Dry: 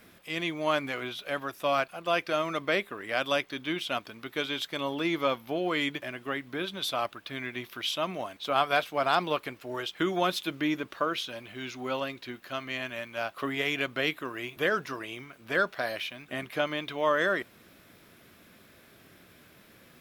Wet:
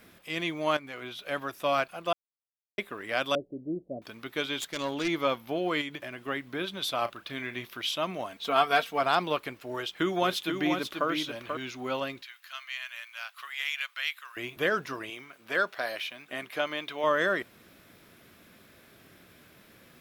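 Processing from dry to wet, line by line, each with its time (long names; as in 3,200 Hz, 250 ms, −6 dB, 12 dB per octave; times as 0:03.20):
0:00.77–0:01.36: fade in, from −12.5 dB
0:02.13–0:02.78: silence
0:03.35–0:04.02: Butterworth low-pass 610 Hz 48 dB per octave
0:04.59–0:05.08: phase distortion by the signal itself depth 0.15 ms
0:05.81–0:06.28: downward compressor 3 to 1, threshold −34 dBFS
0:06.98–0:07.65: double-tracking delay 34 ms −12 dB
0:08.32–0:09.01: comb filter 4.4 ms
0:09.73–0:11.57: single-tap delay 487 ms −6 dB
0:12.22–0:14.37: Bessel high-pass filter 1,700 Hz, order 4
0:15.10–0:17.04: high-pass filter 400 Hz 6 dB per octave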